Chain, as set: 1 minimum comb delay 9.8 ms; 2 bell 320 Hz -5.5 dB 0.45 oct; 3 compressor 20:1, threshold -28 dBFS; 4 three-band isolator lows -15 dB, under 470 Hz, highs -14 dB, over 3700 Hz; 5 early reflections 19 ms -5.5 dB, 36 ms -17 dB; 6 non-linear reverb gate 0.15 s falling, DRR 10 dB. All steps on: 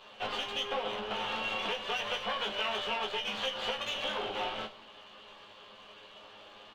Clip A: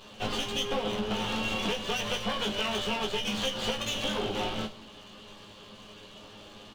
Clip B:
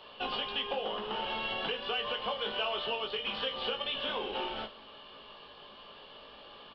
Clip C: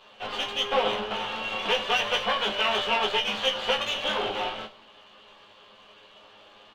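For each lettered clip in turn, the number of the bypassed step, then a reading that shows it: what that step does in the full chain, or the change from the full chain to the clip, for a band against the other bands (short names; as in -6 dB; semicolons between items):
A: 4, 125 Hz band +11.0 dB; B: 1, 2 kHz band -2.5 dB; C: 3, mean gain reduction 4.0 dB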